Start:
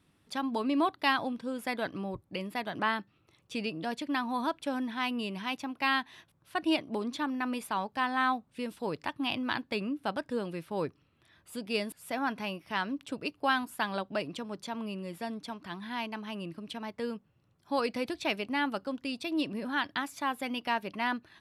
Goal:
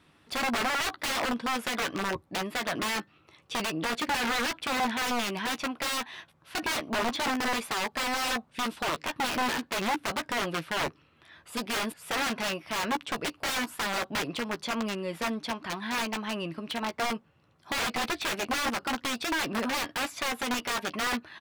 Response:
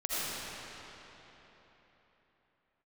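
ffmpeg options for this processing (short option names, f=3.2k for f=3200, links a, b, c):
-filter_complex "[0:a]aeval=exprs='(mod(31.6*val(0)+1,2)-1)/31.6':c=same,asplit=2[a][b];[b]adelay=13,volume=-11dB[c];[a][c]amix=inputs=2:normalize=0,asplit=2[d][e];[e]highpass=f=720:p=1,volume=8dB,asoftclip=type=tanh:threshold=-27.5dB[f];[d][f]amix=inputs=2:normalize=0,lowpass=f=2.9k:p=1,volume=-6dB,volume=7.5dB"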